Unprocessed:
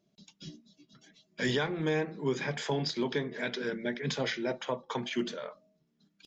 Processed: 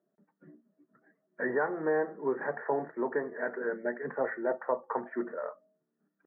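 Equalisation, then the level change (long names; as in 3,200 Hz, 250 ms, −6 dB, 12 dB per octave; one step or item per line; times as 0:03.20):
high-pass filter 290 Hz 12 dB per octave
dynamic equaliser 830 Hz, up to +7 dB, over −46 dBFS, Q 0.82
Chebyshev low-pass with heavy ripple 1,900 Hz, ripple 3 dB
0.0 dB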